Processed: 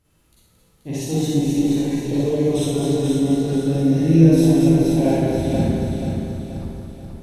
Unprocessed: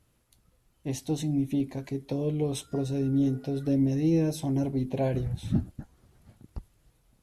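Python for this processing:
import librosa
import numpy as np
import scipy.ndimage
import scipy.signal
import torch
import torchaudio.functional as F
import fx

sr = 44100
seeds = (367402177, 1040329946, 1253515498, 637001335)

y = fx.reverse_delay_fb(x, sr, ms=112, feedback_pct=64, wet_db=-4.0)
y = fx.echo_feedback(y, sr, ms=481, feedback_pct=45, wet_db=-5)
y = fx.rev_schroeder(y, sr, rt60_s=0.99, comb_ms=38, drr_db=-8.0)
y = F.gain(torch.from_numpy(y), -1.0).numpy()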